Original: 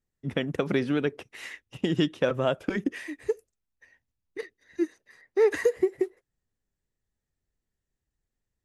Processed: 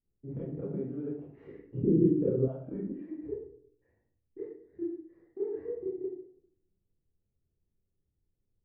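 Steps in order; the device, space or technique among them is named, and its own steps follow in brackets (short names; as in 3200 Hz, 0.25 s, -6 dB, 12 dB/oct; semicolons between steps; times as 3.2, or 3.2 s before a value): television next door (compressor 4:1, threshold -37 dBFS, peak gain reduction 17 dB; LPF 440 Hz 12 dB/oct; reverb RT60 0.65 s, pre-delay 23 ms, DRR -8.5 dB); 1.47–2.48 resonant low shelf 540 Hz +8 dB, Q 3; gain -6 dB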